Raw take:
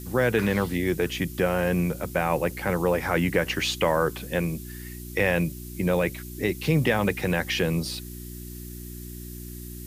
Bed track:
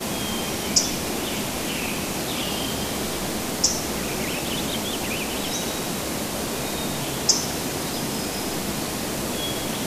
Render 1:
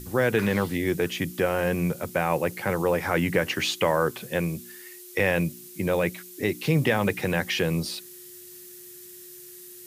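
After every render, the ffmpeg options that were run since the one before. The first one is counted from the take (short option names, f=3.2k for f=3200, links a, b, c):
-af "bandreject=f=60:t=h:w=4,bandreject=f=120:t=h:w=4,bandreject=f=180:t=h:w=4,bandreject=f=240:t=h:w=4,bandreject=f=300:t=h:w=4"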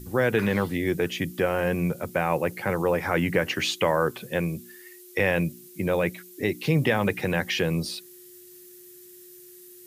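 -af "afftdn=nr=6:nf=-45"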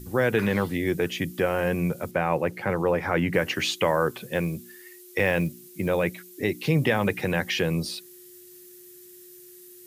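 -filter_complex "[0:a]asettb=1/sr,asplit=3[a][b][c];[a]atrim=end=2.114[d];[b]atrim=start=2.11:end=3.33,asetpts=PTS-STARTPTS,afade=t=in:d=0.004:c=qsin,afade=t=out:st=1.216:d=0.004:c=qsin,aemphasis=mode=reproduction:type=cd[e];[c]atrim=start=3.326[f];[d][e]acrossfade=d=0.004:c1=hsin:c2=qsin[g];[g][f]acrossfade=d=0.004:c1=qsin:c2=hsin,asettb=1/sr,asplit=3[h][i][j];[h]atrim=end=4.124[k];[i]atrim=start=4.12:end=5.89,asetpts=PTS-STARTPTS,afade=t=in:d=0.004:c=qsin,afade=t=out:st=1.766:d=0.004:c=qsin,acrusher=bits=8:mode=log:mix=0:aa=0.000001[l];[j]atrim=start=5.886[m];[k][l]acrossfade=d=0.004:c1=hsin:c2=qsin[n];[n][m]acrossfade=d=0.004:c1=qsin:c2=hsin"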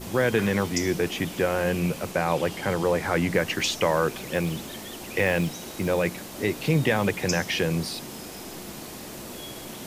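-filter_complex "[1:a]volume=-12dB[a];[0:a][a]amix=inputs=2:normalize=0"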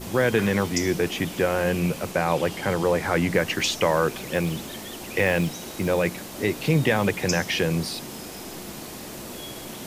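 -af "volume=1.5dB"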